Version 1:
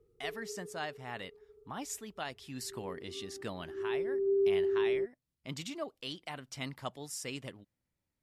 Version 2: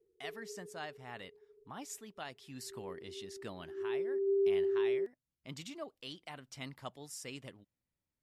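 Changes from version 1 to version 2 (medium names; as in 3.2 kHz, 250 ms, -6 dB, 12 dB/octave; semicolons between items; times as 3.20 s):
speech -5.0 dB; background: add ladder band-pass 410 Hz, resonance 65%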